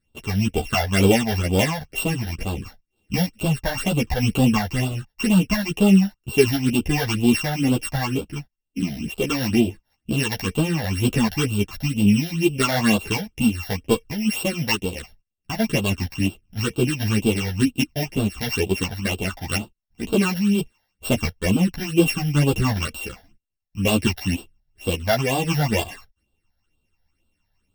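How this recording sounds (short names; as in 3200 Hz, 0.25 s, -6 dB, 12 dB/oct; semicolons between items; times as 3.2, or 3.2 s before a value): a buzz of ramps at a fixed pitch in blocks of 16 samples; phasing stages 8, 2.1 Hz, lowest notch 330–1900 Hz; tremolo saw up 0.61 Hz, depth 35%; a shimmering, thickened sound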